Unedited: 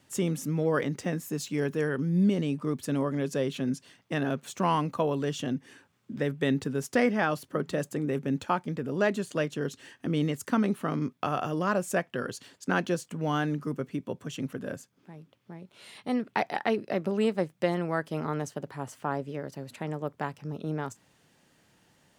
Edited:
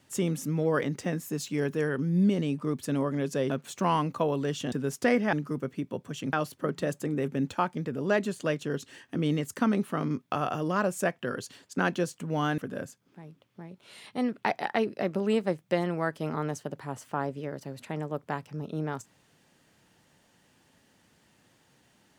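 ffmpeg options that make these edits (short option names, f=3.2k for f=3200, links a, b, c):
-filter_complex "[0:a]asplit=6[a][b][c][d][e][f];[a]atrim=end=3.502[g];[b]atrim=start=4.288:end=5.512[h];[c]atrim=start=6.628:end=7.242[i];[d]atrim=start=13.488:end=14.492[j];[e]atrim=start=7.238:end=13.492[k];[f]atrim=start=14.488[l];[g][h]acrossfade=d=0.004:c1=hsin:c2=hsin[m];[m][i]acrossfade=d=0.004:c1=hsin:c2=hsin[n];[n][j]acrossfade=d=0.004:c1=hsin:c2=hsin[o];[o][k]acrossfade=d=0.004:c1=hsin:c2=hsin[p];[p][l]acrossfade=d=0.004:c1=hsin:c2=hsin"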